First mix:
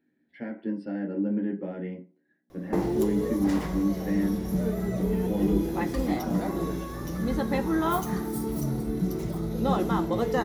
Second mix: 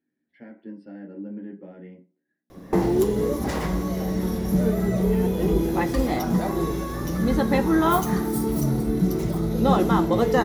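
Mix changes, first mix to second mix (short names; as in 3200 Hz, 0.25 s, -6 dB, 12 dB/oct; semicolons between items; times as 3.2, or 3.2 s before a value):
speech -8.0 dB; background +6.0 dB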